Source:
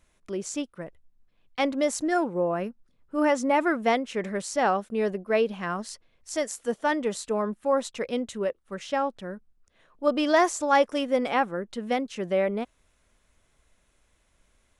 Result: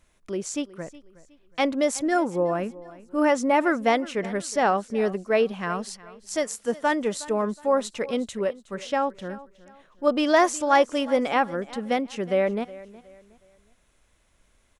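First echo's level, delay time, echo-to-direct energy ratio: -19.0 dB, 366 ms, -18.5 dB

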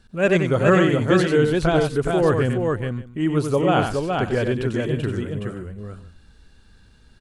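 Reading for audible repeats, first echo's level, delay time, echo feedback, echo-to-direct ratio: 3, -6.5 dB, 93 ms, no regular repeats, -2.0 dB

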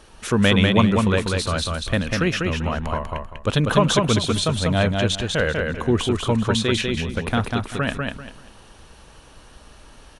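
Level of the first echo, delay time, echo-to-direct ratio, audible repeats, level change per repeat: -3.5 dB, 195 ms, -3.0 dB, 3, -12.0 dB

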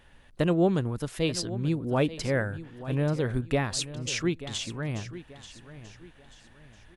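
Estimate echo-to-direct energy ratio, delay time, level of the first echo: -14.0 dB, 885 ms, -14.5 dB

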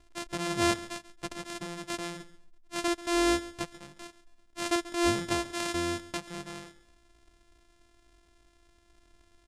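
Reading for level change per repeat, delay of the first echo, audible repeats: -11.5 dB, 137 ms, 2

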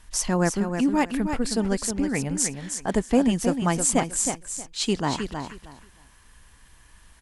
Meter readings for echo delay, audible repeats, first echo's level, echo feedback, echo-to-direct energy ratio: 315 ms, 3, -7.0 dB, 20%, -7.0 dB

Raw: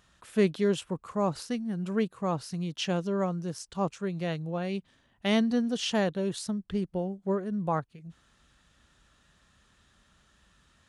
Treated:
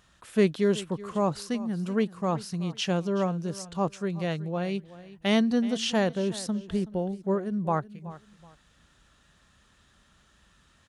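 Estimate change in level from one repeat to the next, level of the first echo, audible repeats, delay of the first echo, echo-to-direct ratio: -11.5 dB, -17.5 dB, 2, 375 ms, -17.0 dB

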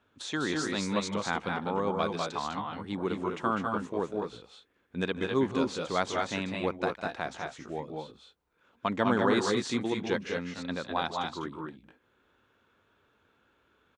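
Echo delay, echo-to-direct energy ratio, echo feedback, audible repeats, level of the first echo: 152 ms, -2.0 dB, no regular repeats, 3, -19.0 dB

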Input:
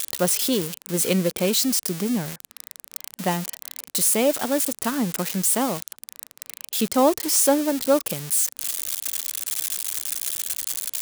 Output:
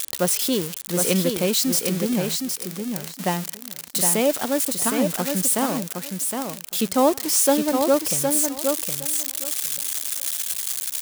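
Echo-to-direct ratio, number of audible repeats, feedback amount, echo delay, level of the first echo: -5.0 dB, 2, 17%, 764 ms, -5.0 dB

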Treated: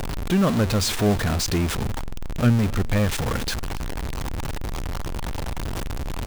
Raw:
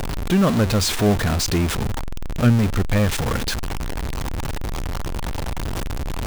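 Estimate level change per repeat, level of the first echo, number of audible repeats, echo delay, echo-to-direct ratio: no regular repeats, -24.0 dB, 1, 272 ms, -24.0 dB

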